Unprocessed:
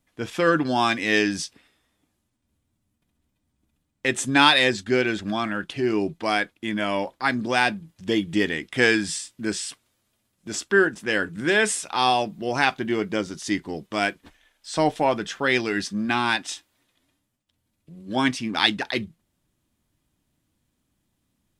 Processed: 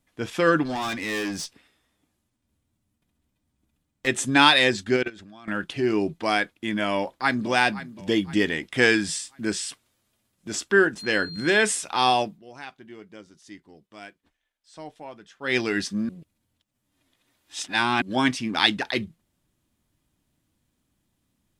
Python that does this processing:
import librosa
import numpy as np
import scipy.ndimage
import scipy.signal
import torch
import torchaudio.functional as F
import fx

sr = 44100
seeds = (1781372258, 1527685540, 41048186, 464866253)

y = fx.tube_stage(x, sr, drive_db=25.0, bias=0.3, at=(0.65, 4.07))
y = fx.level_steps(y, sr, step_db=23, at=(4.96, 5.48))
y = fx.echo_throw(y, sr, start_s=6.93, length_s=0.55, ms=520, feedback_pct=45, wet_db=-15.0)
y = fx.dmg_tone(y, sr, hz=4200.0, level_db=-37.0, at=(10.97, 11.62), fade=0.02)
y = fx.edit(y, sr, fx.fade_down_up(start_s=12.22, length_s=3.36, db=-19.0, fade_s=0.18),
    fx.reverse_span(start_s=16.09, length_s=1.93), tone=tone)